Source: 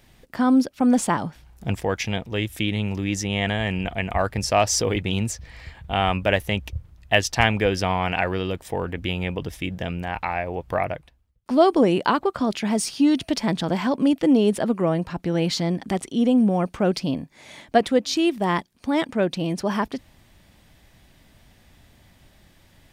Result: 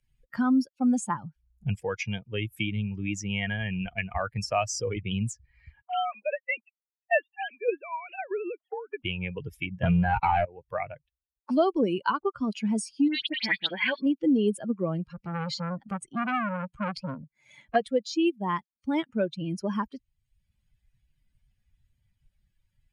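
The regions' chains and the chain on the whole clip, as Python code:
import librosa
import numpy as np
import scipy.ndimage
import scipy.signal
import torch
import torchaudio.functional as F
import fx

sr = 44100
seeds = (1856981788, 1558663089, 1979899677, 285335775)

y = fx.chain(x, sr, fx.sine_speech(),
    fx.steep_highpass(hz=260.0, slope=36),
    fx.tremolo_shape(shape='saw_down', hz=1.6, depth_pct=75), at=(5.81, 9.05))
y = fx.chain(y, sr, fx.leveller(passes=5),
    fx.air_absorb(metres=340.0), at=(9.83, 10.45))
y = fx.chain(y, sr, fx.highpass(hz=300.0, slope=12),
    fx.band_shelf(hz=2700.0, db=13.0, octaves=1.7),
    fx.dispersion(late='highs', ms=78.0, hz=2100.0), at=(13.08, 14.06))
y = fx.chain(y, sr, fx.low_shelf(hz=150.0, db=5.5),
    fx.transformer_sat(knee_hz=1600.0), at=(15.06, 17.76))
y = fx.bin_expand(y, sr, power=2.0)
y = scipy.signal.sosfilt(scipy.signal.butter(4, 9500.0, 'lowpass', fs=sr, output='sos'), y)
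y = fx.band_squash(y, sr, depth_pct=70)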